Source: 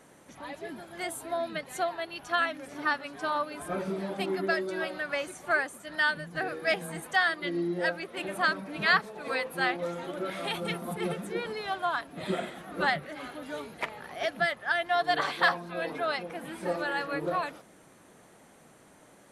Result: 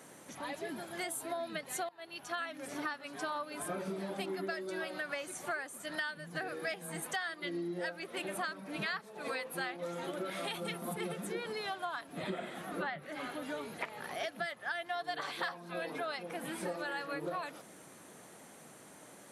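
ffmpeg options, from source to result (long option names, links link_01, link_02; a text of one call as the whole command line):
ffmpeg -i in.wav -filter_complex "[0:a]asettb=1/sr,asplit=3[link_01][link_02][link_03];[link_01]atrim=end=12.184[link_04];[link_02]atrim=start=12.18:end=13.85,asetpts=PTS-STARTPTS,afade=type=in:duration=0.004:curve=qsin,afade=type=out:start_time=1.666:duration=0.004:curve=qsin,acrossover=split=3300[link_05][link_06];[link_06]acompressor=threshold=-57dB:ratio=4:attack=1:release=60[link_07];[link_05][link_07]amix=inputs=2:normalize=0[link_08];[link_03]atrim=start=13.846[link_09];[link_04][link_08]acrossfade=duration=0.004:curve1=hsin:curve2=qsin[link_10];[link_10][link_09]acrossfade=duration=0.004:curve1=qsin:curve2=hsin,asplit=2[link_11][link_12];[link_11]atrim=end=1.89,asetpts=PTS-STARTPTS,afade=type=out:start_time=1.886:duration=0.004:curve=hsin:silence=0.112202[link_13];[link_12]atrim=start=1.89,asetpts=PTS-STARTPTS,afade=type=in:duration=0.78:silence=0.112202[link_14];[link_13][link_14]concat=n=2:v=0:a=1,highpass=110,highshelf=frequency=4700:gain=6,acompressor=threshold=-37dB:ratio=5,volume=1dB" out.wav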